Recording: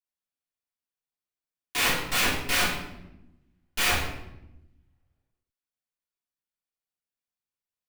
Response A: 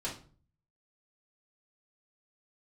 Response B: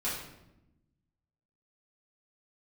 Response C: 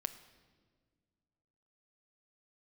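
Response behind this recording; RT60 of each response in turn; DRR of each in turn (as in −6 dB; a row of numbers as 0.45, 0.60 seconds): B; 0.40, 0.90, 1.7 seconds; −6.0, −10.5, 10.0 decibels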